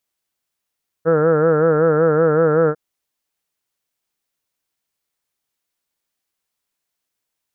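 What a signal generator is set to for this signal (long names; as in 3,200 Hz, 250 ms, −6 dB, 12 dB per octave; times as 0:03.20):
vowel by formant synthesis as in heard, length 1.70 s, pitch 158 Hz, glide 0 semitones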